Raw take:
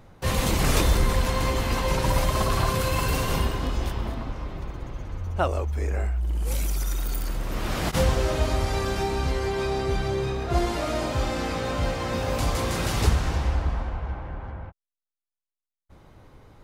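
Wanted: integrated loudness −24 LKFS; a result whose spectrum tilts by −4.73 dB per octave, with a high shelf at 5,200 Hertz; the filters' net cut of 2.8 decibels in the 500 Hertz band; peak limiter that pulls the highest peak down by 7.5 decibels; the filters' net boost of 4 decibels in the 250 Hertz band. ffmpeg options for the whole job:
ffmpeg -i in.wav -af "equalizer=frequency=250:width_type=o:gain=7,equalizer=frequency=500:width_type=o:gain=-6,highshelf=frequency=5200:gain=5.5,volume=3dB,alimiter=limit=-11.5dB:level=0:latency=1" out.wav

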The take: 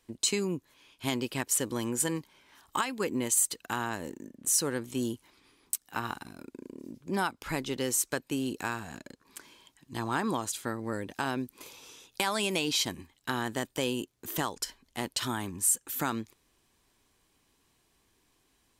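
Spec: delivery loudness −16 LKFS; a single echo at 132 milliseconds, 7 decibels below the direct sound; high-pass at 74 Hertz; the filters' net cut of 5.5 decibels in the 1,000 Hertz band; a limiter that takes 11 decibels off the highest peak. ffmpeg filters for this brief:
ffmpeg -i in.wav -af "highpass=74,equalizer=frequency=1000:width_type=o:gain=-7,alimiter=limit=-22.5dB:level=0:latency=1,aecho=1:1:132:0.447,volume=19dB" out.wav

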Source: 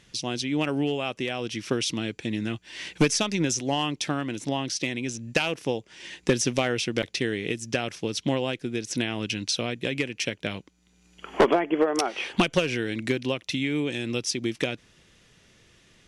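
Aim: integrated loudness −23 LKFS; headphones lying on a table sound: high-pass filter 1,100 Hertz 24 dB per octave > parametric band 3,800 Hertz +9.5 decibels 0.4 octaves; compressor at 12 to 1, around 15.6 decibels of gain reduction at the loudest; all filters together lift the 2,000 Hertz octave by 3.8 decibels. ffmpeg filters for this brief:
ffmpeg -i in.wav -af "equalizer=frequency=2000:width_type=o:gain=4,acompressor=threshold=-31dB:ratio=12,highpass=frequency=1100:width=0.5412,highpass=frequency=1100:width=1.3066,equalizer=frequency=3800:width_type=o:width=0.4:gain=9.5,volume=13dB" out.wav

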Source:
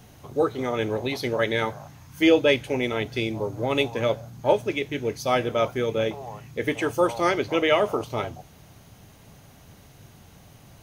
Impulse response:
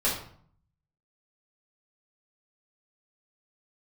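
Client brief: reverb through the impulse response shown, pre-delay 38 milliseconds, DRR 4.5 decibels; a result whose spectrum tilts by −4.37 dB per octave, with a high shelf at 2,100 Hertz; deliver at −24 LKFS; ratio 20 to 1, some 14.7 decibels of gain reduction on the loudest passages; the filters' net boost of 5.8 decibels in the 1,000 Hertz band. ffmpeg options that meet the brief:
-filter_complex "[0:a]equalizer=frequency=1000:width_type=o:gain=6,highshelf=frequency=2100:gain=6.5,acompressor=threshold=-25dB:ratio=20,asplit=2[link_01][link_02];[1:a]atrim=start_sample=2205,adelay=38[link_03];[link_02][link_03]afir=irnorm=-1:irlink=0,volume=-15dB[link_04];[link_01][link_04]amix=inputs=2:normalize=0,volume=5.5dB"

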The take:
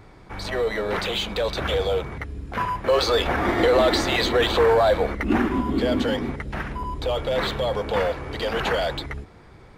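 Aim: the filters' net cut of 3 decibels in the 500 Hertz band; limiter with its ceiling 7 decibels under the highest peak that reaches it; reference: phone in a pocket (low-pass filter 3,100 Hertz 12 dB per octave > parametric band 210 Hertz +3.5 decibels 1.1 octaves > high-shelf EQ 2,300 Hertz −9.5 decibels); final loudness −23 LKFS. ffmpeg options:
ffmpeg -i in.wav -af "equalizer=frequency=500:width_type=o:gain=-3.5,alimiter=limit=-15.5dB:level=0:latency=1,lowpass=3100,equalizer=frequency=210:width_type=o:width=1.1:gain=3.5,highshelf=frequency=2300:gain=-9.5,volume=4dB" out.wav

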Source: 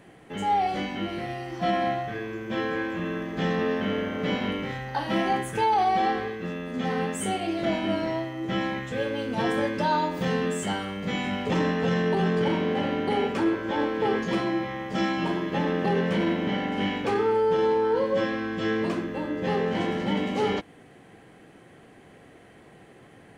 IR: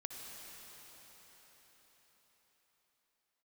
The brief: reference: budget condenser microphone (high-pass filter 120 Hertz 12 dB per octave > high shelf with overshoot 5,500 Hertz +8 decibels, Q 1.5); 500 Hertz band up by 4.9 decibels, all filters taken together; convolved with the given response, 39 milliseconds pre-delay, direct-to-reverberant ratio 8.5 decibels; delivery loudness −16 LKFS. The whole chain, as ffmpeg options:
-filter_complex "[0:a]equalizer=frequency=500:width_type=o:gain=6,asplit=2[link_01][link_02];[1:a]atrim=start_sample=2205,adelay=39[link_03];[link_02][link_03]afir=irnorm=-1:irlink=0,volume=-7dB[link_04];[link_01][link_04]amix=inputs=2:normalize=0,highpass=120,highshelf=frequency=5500:width_type=q:width=1.5:gain=8,volume=7dB"

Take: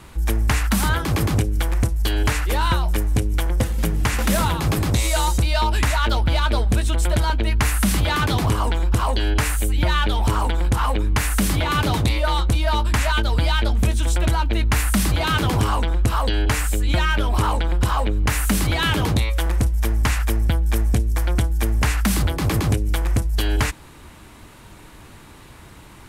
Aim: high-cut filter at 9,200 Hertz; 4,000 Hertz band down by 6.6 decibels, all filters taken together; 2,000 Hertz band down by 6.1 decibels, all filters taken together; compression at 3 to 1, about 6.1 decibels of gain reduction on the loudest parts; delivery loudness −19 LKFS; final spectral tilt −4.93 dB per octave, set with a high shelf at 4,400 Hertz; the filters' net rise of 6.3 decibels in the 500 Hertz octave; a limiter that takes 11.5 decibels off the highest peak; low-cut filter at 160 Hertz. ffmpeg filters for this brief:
ffmpeg -i in.wav -af "highpass=160,lowpass=9200,equalizer=frequency=500:width_type=o:gain=8.5,equalizer=frequency=2000:width_type=o:gain=-7.5,equalizer=frequency=4000:width_type=o:gain=-4,highshelf=frequency=4400:gain=-3.5,acompressor=threshold=-24dB:ratio=3,volume=13dB,alimiter=limit=-10dB:level=0:latency=1" out.wav

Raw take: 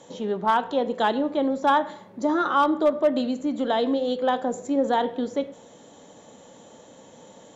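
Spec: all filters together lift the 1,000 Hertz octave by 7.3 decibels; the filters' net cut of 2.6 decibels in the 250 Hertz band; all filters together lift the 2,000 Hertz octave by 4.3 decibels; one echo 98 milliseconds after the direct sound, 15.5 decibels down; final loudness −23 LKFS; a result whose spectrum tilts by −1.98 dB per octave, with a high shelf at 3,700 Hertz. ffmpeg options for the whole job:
ffmpeg -i in.wav -af "equalizer=frequency=250:width_type=o:gain=-3.5,equalizer=frequency=1000:width_type=o:gain=9,equalizer=frequency=2000:width_type=o:gain=3,highshelf=frequency=3700:gain=-7,aecho=1:1:98:0.168,volume=-3dB" out.wav

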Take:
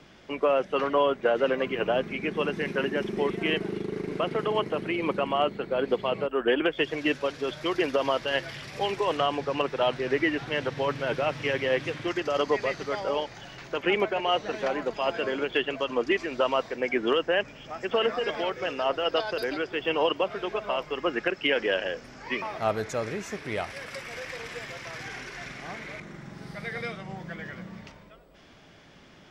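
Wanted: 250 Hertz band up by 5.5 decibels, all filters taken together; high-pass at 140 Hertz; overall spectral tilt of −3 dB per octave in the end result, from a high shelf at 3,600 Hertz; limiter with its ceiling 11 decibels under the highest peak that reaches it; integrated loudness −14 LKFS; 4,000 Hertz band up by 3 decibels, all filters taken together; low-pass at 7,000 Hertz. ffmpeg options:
ffmpeg -i in.wav -af "highpass=140,lowpass=7000,equalizer=frequency=250:width_type=o:gain=8,highshelf=frequency=3600:gain=-3.5,equalizer=frequency=4000:width_type=o:gain=7.5,volume=17dB,alimiter=limit=-3.5dB:level=0:latency=1" out.wav

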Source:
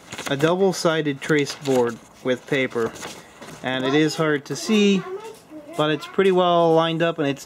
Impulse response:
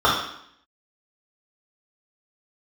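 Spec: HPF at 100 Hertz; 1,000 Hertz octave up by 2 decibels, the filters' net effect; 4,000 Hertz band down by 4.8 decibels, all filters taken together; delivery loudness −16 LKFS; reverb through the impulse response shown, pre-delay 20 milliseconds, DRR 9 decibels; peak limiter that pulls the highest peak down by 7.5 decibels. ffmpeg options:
-filter_complex "[0:a]highpass=100,equalizer=frequency=1000:width_type=o:gain=3,equalizer=frequency=4000:width_type=o:gain=-6.5,alimiter=limit=-12dB:level=0:latency=1,asplit=2[link_01][link_02];[1:a]atrim=start_sample=2205,adelay=20[link_03];[link_02][link_03]afir=irnorm=-1:irlink=0,volume=-31.5dB[link_04];[link_01][link_04]amix=inputs=2:normalize=0,volume=7dB"

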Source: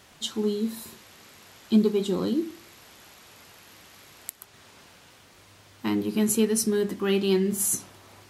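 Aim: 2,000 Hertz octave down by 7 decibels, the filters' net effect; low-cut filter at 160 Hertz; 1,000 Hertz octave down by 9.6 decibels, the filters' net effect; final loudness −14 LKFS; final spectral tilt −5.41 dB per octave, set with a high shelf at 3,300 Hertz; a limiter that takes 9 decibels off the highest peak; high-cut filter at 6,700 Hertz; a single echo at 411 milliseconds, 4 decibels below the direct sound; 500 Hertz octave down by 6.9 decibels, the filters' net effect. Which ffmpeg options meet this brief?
ffmpeg -i in.wav -af "highpass=160,lowpass=6700,equalizer=frequency=500:width_type=o:gain=-8,equalizer=frequency=1000:width_type=o:gain=-8,equalizer=frequency=2000:width_type=o:gain=-3.5,highshelf=frequency=3300:gain=-8,alimiter=limit=-22.5dB:level=0:latency=1,aecho=1:1:411:0.631,volume=18dB" out.wav

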